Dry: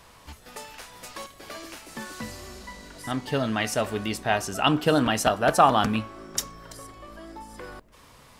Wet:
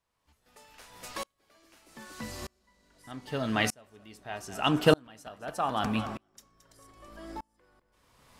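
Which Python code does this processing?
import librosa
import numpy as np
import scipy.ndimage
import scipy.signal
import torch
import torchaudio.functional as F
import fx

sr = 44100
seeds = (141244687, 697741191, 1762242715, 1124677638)

p1 = x + fx.echo_feedback(x, sr, ms=221, feedback_pct=36, wet_db=-17.0, dry=0)
p2 = fx.tremolo_decay(p1, sr, direction='swelling', hz=0.81, depth_db=35)
y = p2 * librosa.db_to_amplitude(2.5)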